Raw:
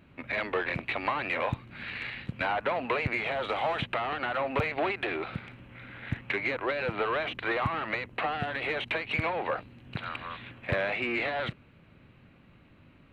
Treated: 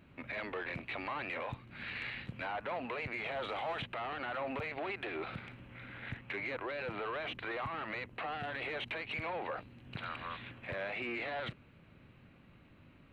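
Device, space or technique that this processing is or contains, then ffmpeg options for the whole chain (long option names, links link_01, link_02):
stacked limiters: -af "alimiter=limit=-21dB:level=0:latency=1:release=454,alimiter=level_in=4dB:limit=-24dB:level=0:latency=1:release=13,volume=-4dB,volume=-3dB"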